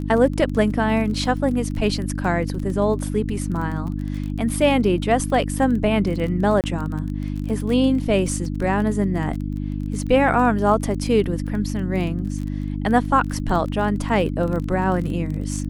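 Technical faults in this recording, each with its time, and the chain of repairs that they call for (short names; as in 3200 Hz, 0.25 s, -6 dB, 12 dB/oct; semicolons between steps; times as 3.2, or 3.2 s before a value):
crackle 24/s -28 dBFS
hum 50 Hz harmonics 6 -26 dBFS
6.61–6.64 gap 28 ms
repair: de-click; de-hum 50 Hz, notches 6; interpolate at 6.61, 28 ms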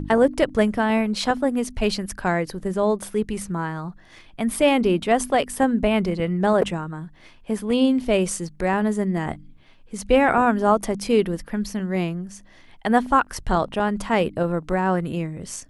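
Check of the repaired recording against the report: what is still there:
none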